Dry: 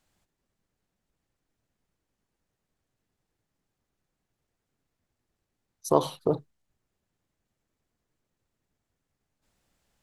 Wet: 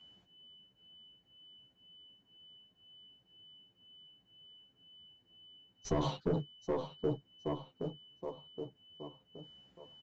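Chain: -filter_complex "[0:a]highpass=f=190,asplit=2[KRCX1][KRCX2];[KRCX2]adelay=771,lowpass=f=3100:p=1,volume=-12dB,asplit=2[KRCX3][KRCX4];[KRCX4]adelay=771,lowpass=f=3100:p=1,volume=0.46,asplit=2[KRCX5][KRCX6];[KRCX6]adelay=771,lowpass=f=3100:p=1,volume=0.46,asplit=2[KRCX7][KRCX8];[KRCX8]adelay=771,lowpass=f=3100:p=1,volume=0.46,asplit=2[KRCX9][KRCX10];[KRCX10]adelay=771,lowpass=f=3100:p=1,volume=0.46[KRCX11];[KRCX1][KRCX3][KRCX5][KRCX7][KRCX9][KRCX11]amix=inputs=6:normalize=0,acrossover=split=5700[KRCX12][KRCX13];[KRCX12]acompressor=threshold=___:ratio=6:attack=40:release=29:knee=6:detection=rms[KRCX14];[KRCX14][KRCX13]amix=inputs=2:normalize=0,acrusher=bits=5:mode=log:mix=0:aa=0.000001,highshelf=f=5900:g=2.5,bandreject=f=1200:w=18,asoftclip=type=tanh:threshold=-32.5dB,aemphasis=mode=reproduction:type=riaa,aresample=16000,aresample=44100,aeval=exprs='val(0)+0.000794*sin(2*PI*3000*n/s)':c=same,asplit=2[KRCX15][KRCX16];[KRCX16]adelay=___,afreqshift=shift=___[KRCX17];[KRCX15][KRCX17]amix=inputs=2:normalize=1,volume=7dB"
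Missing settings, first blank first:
-37dB, 10.3, -2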